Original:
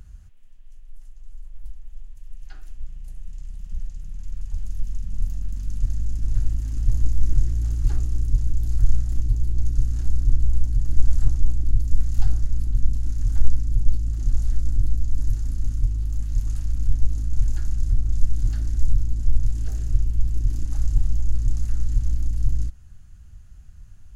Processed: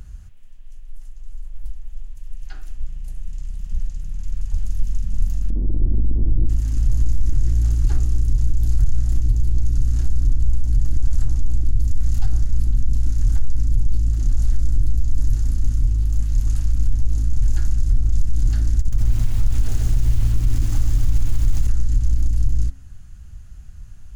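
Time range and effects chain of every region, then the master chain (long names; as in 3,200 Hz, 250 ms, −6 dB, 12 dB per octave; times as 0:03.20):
0:05.50–0:06.49: converter with a step at zero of −29.5 dBFS + low-pass with resonance 320 Hz, resonance Q 2.5
0:18.79–0:21.67: compressor whose output falls as the input rises −14 dBFS, ratio −0.5 + feedback echo at a low word length 134 ms, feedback 55%, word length 7 bits, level −5 dB
whole clip: hum removal 89.15 Hz, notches 23; boost into a limiter +13 dB; level −7 dB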